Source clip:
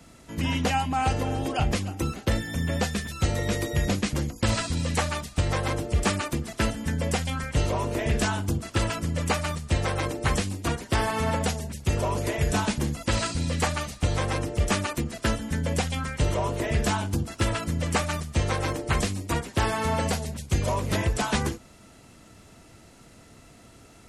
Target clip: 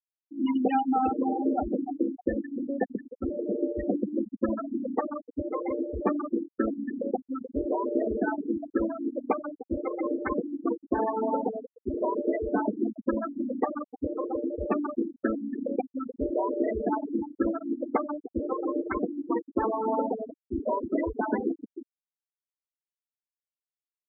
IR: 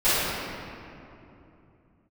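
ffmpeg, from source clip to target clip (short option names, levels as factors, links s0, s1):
-filter_complex "[0:a]lowshelf=f=200:t=q:w=3:g=-11.5,asplit=2[s0][s1];[s1]adelay=308,lowpass=f=2000:p=1,volume=0.376,asplit=2[s2][s3];[s3]adelay=308,lowpass=f=2000:p=1,volume=0.52,asplit=2[s4][s5];[s5]adelay=308,lowpass=f=2000:p=1,volume=0.52,asplit=2[s6][s7];[s7]adelay=308,lowpass=f=2000:p=1,volume=0.52,asplit=2[s8][s9];[s9]adelay=308,lowpass=f=2000:p=1,volume=0.52,asplit=2[s10][s11];[s11]adelay=308,lowpass=f=2000:p=1,volume=0.52[s12];[s0][s2][s4][s6][s8][s10][s12]amix=inputs=7:normalize=0,afftfilt=real='re*gte(hypot(re,im),0.178)':imag='im*gte(hypot(re,im),0.178)':win_size=1024:overlap=0.75"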